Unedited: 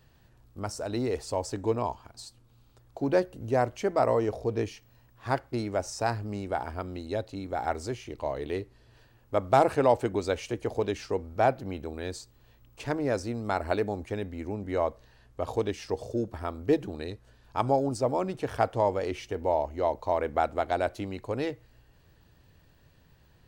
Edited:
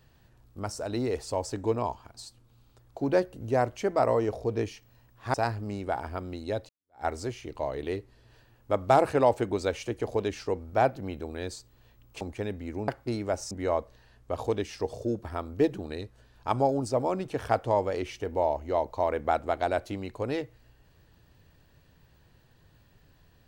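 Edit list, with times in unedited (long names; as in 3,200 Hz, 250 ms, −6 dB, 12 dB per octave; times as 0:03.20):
0:05.34–0:05.97: move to 0:14.60
0:07.32–0:07.68: fade in exponential
0:12.84–0:13.93: remove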